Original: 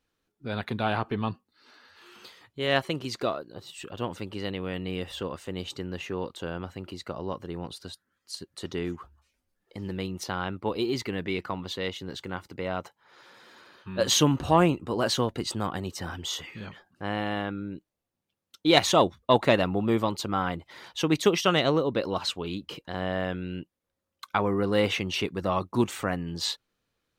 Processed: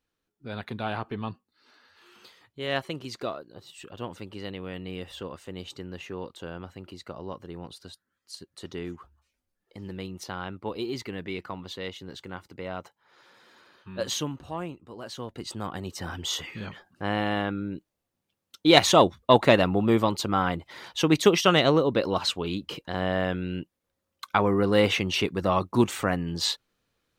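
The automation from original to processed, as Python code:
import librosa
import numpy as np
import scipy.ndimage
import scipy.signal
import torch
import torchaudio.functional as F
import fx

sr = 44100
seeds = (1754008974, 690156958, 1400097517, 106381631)

y = fx.gain(x, sr, db=fx.line((13.96, -4.0), (14.45, -14.0), (15.09, -14.0), (15.41, -6.0), (16.36, 3.0)))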